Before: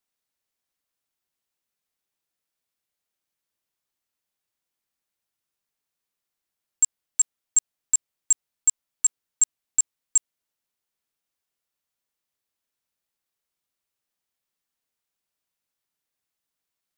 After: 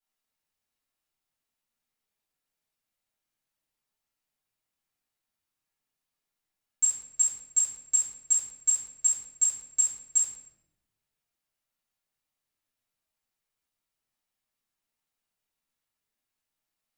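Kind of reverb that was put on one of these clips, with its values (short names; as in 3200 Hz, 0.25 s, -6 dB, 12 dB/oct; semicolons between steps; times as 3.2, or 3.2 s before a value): shoebox room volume 270 m³, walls mixed, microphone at 4.2 m; gain -12 dB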